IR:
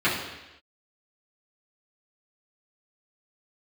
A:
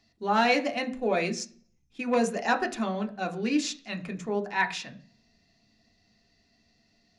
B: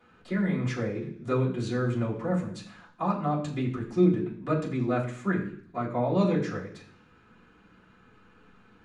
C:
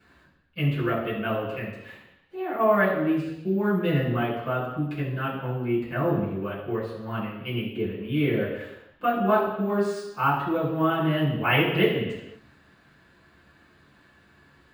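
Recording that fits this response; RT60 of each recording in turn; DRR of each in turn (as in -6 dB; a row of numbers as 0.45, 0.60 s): C; 0.40 s, 0.60 s, not exponential; 3.5, -10.5, -11.5 dB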